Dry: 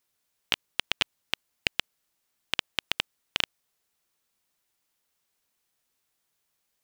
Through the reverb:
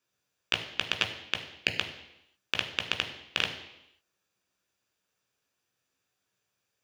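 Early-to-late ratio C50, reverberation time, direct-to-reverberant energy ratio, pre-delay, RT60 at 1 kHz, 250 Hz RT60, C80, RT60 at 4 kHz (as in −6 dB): 9.0 dB, 0.85 s, 3.5 dB, 13 ms, 0.85 s, 0.85 s, 11.5 dB, 0.85 s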